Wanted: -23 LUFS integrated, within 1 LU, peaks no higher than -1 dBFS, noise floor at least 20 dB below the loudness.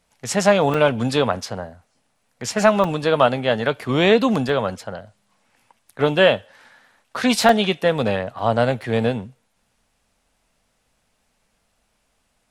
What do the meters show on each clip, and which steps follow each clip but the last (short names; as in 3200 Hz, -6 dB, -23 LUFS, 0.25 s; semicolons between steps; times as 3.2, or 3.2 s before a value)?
dropouts 6; longest dropout 2.8 ms; loudness -19.5 LUFS; peak -1.0 dBFS; loudness target -23.0 LUFS
-> interpolate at 0.74/2.84/4.49/7.49/8.07/8.82, 2.8 ms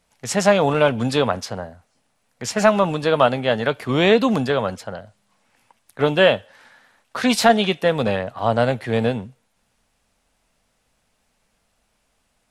dropouts 0; loudness -19.5 LUFS; peak -1.0 dBFS; loudness target -23.0 LUFS
-> gain -3.5 dB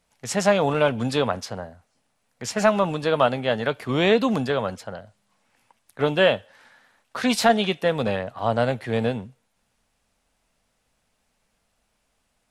loudness -22.5 LUFS; peak -4.5 dBFS; noise floor -72 dBFS